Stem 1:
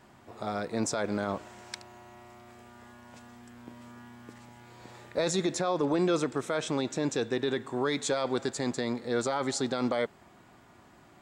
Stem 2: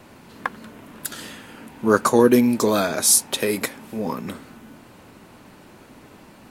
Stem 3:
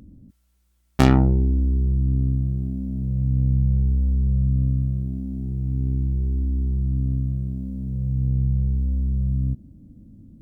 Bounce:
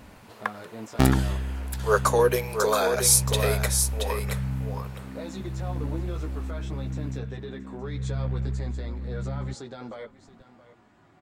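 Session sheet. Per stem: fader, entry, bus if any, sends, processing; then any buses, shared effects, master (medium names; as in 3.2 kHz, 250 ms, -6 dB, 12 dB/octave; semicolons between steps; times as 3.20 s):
+0.5 dB, 0.00 s, no send, echo send -16.5 dB, chorus voices 6, 0.36 Hz, delay 14 ms, depth 4.9 ms; treble shelf 5.9 kHz -11 dB; compression 2:1, threshold -42 dBFS, peak gain reduction 11 dB
-3.0 dB, 0.00 s, no send, echo send -6 dB, steep high-pass 400 Hz 72 dB/octave
-3.5 dB, 0.00 s, no send, no echo send, reverb removal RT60 1.8 s; delay time shaken by noise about 1.6 kHz, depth 0.036 ms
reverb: none
echo: delay 675 ms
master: none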